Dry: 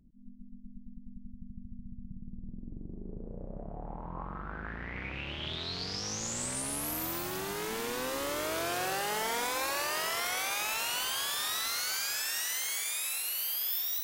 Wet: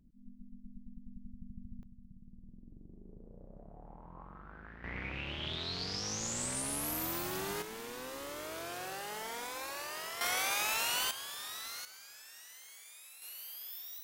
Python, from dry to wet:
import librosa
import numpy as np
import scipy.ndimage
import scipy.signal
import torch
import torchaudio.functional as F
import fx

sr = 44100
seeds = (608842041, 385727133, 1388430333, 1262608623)

y = fx.gain(x, sr, db=fx.steps((0.0, -2.5), (1.83, -11.0), (4.84, -1.5), (7.62, -9.0), (10.21, 0.0), (11.11, -10.0), (11.85, -19.5), (13.22, -13.0)))